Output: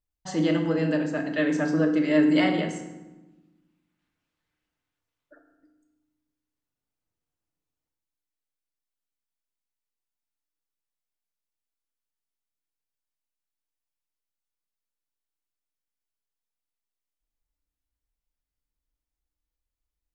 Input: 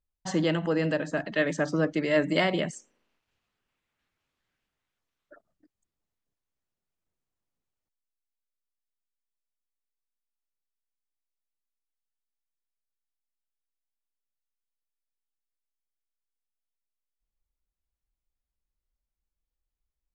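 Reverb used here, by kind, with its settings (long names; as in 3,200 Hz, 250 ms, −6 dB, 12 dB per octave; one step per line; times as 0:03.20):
feedback delay network reverb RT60 1.1 s, low-frequency decay 1.55×, high-frequency decay 0.65×, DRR 2.5 dB
level −2.5 dB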